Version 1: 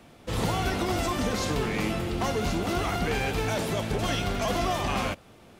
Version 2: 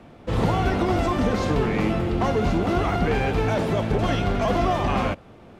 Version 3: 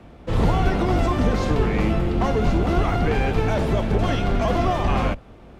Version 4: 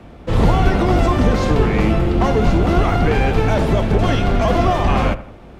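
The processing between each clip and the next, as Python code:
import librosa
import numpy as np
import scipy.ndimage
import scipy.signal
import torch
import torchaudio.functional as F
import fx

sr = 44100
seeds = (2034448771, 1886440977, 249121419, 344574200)

y1 = fx.lowpass(x, sr, hz=1400.0, slope=6)
y1 = F.gain(torch.from_numpy(y1), 6.5).numpy()
y2 = fx.octave_divider(y1, sr, octaves=2, level_db=1.0)
y3 = fx.echo_wet_lowpass(y2, sr, ms=83, feedback_pct=40, hz=2300.0, wet_db=-15)
y3 = F.gain(torch.from_numpy(y3), 5.0).numpy()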